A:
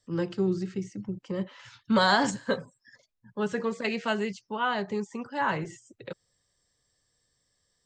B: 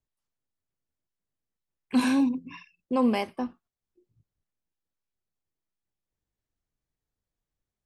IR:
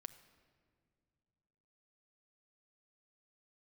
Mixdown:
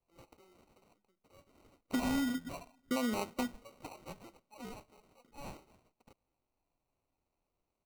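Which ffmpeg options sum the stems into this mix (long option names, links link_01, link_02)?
-filter_complex "[0:a]highpass=1400,aecho=1:1:3.5:0.31,volume=-15dB,asplit=2[link_01][link_02];[link_02]volume=-8dB[link_03];[1:a]acompressor=threshold=-26dB:ratio=6,volume=-2.5dB,asplit=2[link_04][link_05];[link_05]volume=-12dB[link_06];[2:a]atrim=start_sample=2205[link_07];[link_03][link_06]amix=inputs=2:normalize=0[link_08];[link_08][link_07]afir=irnorm=-1:irlink=0[link_09];[link_01][link_04][link_09]amix=inputs=3:normalize=0,acrusher=samples=26:mix=1:aa=0.000001,acompressor=threshold=-29dB:ratio=6"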